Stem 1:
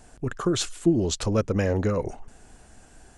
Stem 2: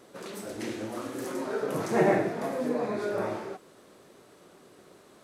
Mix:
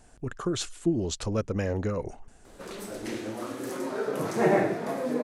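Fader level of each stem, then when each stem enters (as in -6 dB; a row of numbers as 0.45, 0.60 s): -5.0, +0.5 dB; 0.00, 2.45 s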